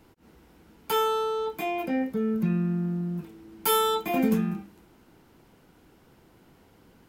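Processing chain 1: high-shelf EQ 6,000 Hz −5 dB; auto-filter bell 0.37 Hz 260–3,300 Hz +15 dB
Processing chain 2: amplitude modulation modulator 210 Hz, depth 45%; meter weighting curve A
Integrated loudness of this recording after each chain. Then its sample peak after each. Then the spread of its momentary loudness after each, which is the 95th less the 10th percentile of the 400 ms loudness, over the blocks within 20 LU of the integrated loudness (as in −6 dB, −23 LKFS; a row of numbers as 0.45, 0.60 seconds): −24.0, −33.0 LKFS; −11.0, −14.0 dBFS; 9, 17 LU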